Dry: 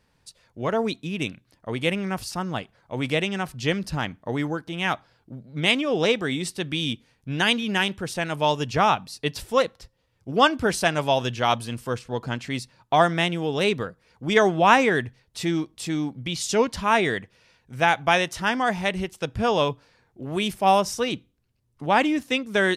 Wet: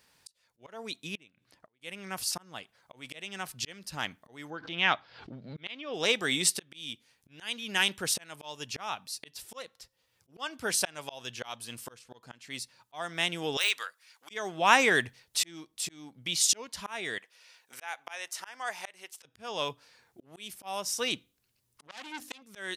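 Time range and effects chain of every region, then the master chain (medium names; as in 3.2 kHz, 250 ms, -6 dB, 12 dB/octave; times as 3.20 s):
1.15–1.80 s: low-pass 2.3 kHz 6 dB/octave + inverted gate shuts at -25 dBFS, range -26 dB
4.50–5.94 s: low-pass 4.4 kHz 24 dB/octave + swell ahead of each attack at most 100 dB/s
13.57–14.31 s: high-pass 1.4 kHz + de-esser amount 70%
17.18–19.25 s: high-pass 550 Hz + dynamic bell 3.4 kHz, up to -6 dB, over -39 dBFS, Q 2.6
21.87–22.42 s: hum notches 50/100/150/200/250/300/350 Hz + transformer saturation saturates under 3.6 kHz
whole clip: slow attack 799 ms; tilt EQ +3 dB/octave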